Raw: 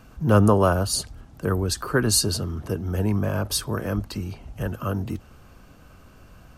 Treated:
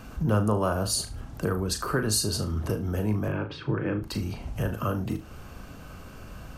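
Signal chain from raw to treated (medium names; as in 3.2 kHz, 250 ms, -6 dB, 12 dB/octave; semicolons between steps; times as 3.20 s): compression 2.5:1, threshold -34 dBFS, peak gain reduction 14.5 dB; 3.28–4.03 s: cabinet simulation 120–2900 Hz, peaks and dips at 140 Hz +9 dB, 220 Hz -5 dB, 320 Hz +8 dB, 660 Hz -9 dB, 1.1 kHz -5 dB, 2.3 kHz +4 dB; on a send: flutter echo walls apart 6.4 m, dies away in 0.27 s; on the sum: trim +5.5 dB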